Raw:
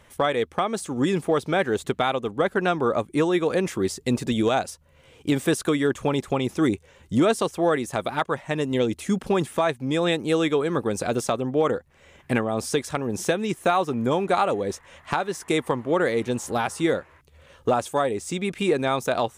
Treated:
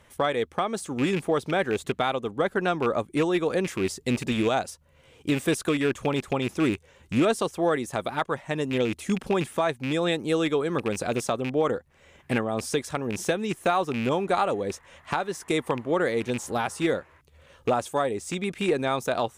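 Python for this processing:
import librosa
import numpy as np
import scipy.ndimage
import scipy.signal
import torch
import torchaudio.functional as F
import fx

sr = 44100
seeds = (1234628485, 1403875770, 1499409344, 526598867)

y = fx.rattle_buzz(x, sr, strikes_db=-27.0, level_db=-20.0)
y = fx.cheby_harmonics(y, sr, harmonics=(2,), levels_db=(-28,), full_scale_db=-10.0)
y = y * 10.0 ** (-2.5 / 20.0)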